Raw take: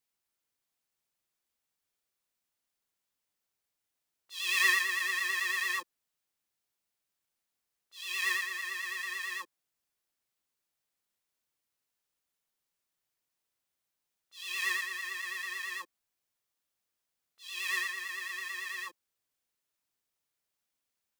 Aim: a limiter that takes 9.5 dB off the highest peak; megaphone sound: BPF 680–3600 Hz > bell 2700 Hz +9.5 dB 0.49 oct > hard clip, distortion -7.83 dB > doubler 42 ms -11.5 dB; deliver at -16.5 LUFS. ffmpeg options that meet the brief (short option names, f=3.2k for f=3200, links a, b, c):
-filter_complex "[0:a]alimiter=limit=-21.5dB:level=0:latency=1,highpass=680,lowpass=3.6k,equalizer=f=2.7k:t=o:w=0.49:g=9.5,asoftclip=type=hard:threshold=-32dB,asplit=2[a][b];[b]adelay=42,volume=-11.5dB[c];[a][c]amix=inputs=2:normalize=0,volume=17.5dB"